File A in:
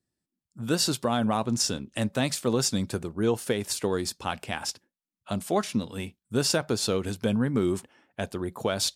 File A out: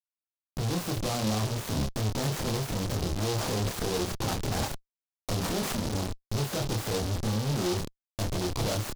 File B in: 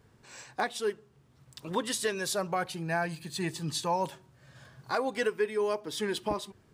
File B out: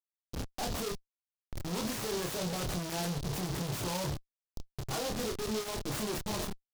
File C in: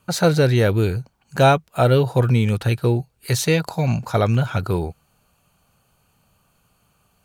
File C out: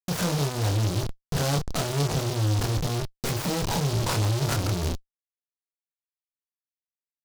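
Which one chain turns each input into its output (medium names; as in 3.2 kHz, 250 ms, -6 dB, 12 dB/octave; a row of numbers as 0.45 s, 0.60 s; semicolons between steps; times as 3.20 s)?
rattle on loud lows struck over -21 dBFS, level -20 dBFS; peaking EQ 110 Hz +9.5 dB 1 oct; compression 6:1, threshold -18 dBFS; Schmitt trigger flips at -39 dBFS; doubling 28 ms -3 dB; low-pass that closes with the level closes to 2.5 kHz, closed at -26 dBFS; delay time shaken by noise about 4.2 kHz, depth 0.12 ms; trim -3 dB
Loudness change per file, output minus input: -2.5 LU, -3.5 LU, -7.0 LU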